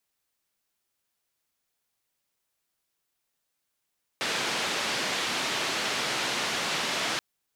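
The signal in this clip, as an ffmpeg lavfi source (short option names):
-f lavfi -i "anoisesrc=c=white:d=2.98:r=44100:seed=1,highpass=f=170,lowpass=f=4100,volume=-17.5dB"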